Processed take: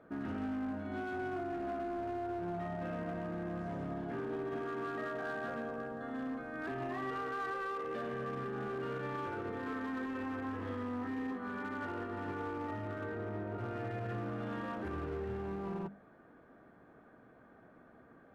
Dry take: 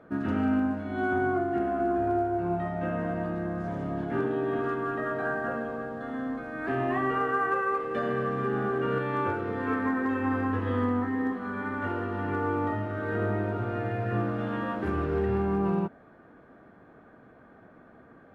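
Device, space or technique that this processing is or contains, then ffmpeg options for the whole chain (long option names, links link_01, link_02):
limiter into clipper: -filter_complex "[0:a]asettb=1/sr,asplit=3[link_01][link_02][link_03];[link_01]atrim=end=4.604[link_04];[link_02]atrim=start=4.6:end=5.37,asetpts=PTS-STARTPTS,afade=type=in:duration=0.004:curve=qsin,afade=type=out:start_time=0.766:duration=0.004:curve=qsin,highpass=130[link_05];[link_03]atrim=start=5.366[link_06];[link_04][link_05]acrossfade=duration=0.004:curve1=hsin:curve2=qsin[link_07];[link_07][link_06]acrossfade=duration=0.004:curve1=qsin:curve2=hsin,alimiter=level_in=0.5dB:limit=-24dB:level=0:latency=1:release=32,volume=-0.5dB,asoftclip=type=hard:threshold=-28dB,bandreject=frequency=50:width_type=h:width=6,bandreject=frequency=100:width_type=h:width=6,bandreject=frequency=150:width_type=h:width=6,bandreject=frequency=200:width_type=h:width=6,asettb=1/sr,asplit=3[link_08][link_09][link_10];[link_08]atrim=end=13.054[link_11];[link_09]atrim=start=13.05:end=13.58,asetpts=PTS-STARTPTS,afade=type=in:duration=0.004:curve=qsin,afade=type=out:start_time=0.526:duration=0.004:curve=qsin,highshelf=frequency=2500:gain=-9.5[link_12];[link_10]atrim=start=13.576[link_13];[link_11][link_12]acrossfade=duration=0.004:curve1=hsin:curve2=qsin[link_14];[link_14][link_13]acrossfade=duration=0.004:curve1=qsin:curve2=hsin,volume=-6dB"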